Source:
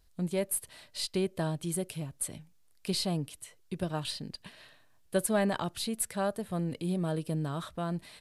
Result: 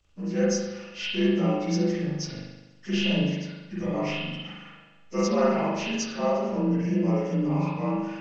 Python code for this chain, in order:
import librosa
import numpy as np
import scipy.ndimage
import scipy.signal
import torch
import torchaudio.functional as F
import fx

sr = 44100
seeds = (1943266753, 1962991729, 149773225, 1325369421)

y = fx.partial_stretch(x, sr, pct=85)
y = fx.rev_spring(y, sr, rt60_s=1.1, pass_ms=(40,), chirp_ms=30, drr_db=-8.0)